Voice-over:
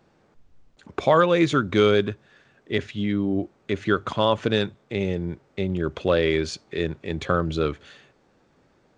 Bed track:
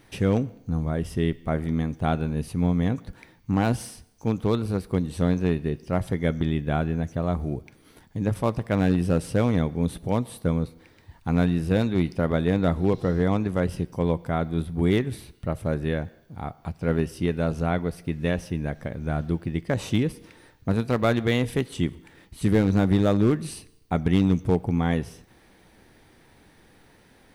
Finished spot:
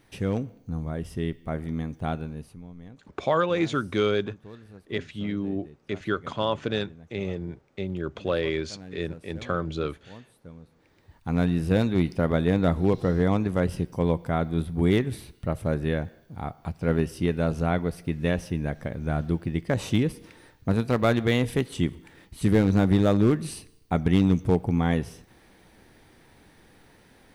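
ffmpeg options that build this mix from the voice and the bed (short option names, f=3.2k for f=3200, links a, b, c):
-filter_complex "[0:a]adelay=2200,volume=-5.5dB[a];[1:a]volume=16.5dB,afade=t=out:st=2.1:d=0.53:silence=0.149624,afade=t=in:st=10.65:d=0.99:silence=0.0841395[b];[a][b]amix=inputs=2:normalize=0"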